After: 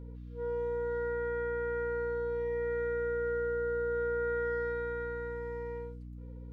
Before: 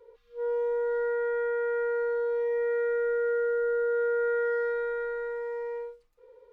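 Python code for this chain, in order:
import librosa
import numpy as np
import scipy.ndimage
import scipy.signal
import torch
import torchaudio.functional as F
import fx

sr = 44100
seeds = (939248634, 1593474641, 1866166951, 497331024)

y = fx.low_shelf(x, sr, hz=410.0, db=-5.5)
y = fx.add_hum(y, sr, base_hz=60, snr_db=10)
y = F.gain(torch.from_numpy(y), -3.5).numpy()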